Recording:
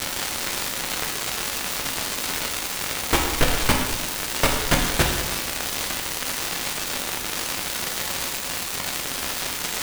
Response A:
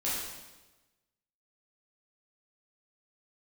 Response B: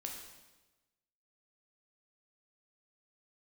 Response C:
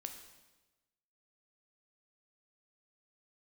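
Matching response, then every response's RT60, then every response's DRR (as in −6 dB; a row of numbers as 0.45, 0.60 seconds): B; 1.1, 1.1, 1.1 seconds; −9.0, 0.5, 5.0 decibels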